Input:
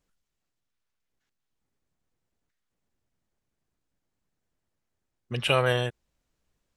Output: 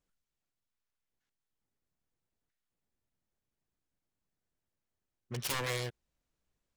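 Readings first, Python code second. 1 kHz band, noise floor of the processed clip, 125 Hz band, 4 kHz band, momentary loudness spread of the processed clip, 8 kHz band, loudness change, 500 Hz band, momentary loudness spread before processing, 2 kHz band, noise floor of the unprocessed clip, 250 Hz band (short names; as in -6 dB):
-11.0 dB, under -85 dBFS, -10.5 dB, -9.5 dB, 10 LU, +4.0 dB, -10.5 dB, -14.0 dB, 12 LU, -10.0 dB, -82 dBFS, -10.0 dB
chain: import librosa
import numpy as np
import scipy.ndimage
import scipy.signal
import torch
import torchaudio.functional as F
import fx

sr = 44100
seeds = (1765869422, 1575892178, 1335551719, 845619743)

y = fx.self_delay(x, sr, depth_ms=0.92)
y = np.clip(y, -10.0 ** (-21.5 / 20.0), 10.0 ** (-21.5 / 20.0))
y = y * librosa.db_to_amplitude(-7.0)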